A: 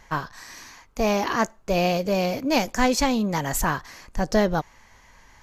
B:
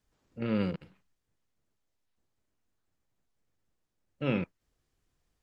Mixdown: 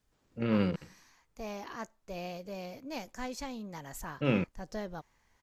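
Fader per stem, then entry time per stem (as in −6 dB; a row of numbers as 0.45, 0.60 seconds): −18.5, +1.5 decibels; 0.40, 0.00 seconds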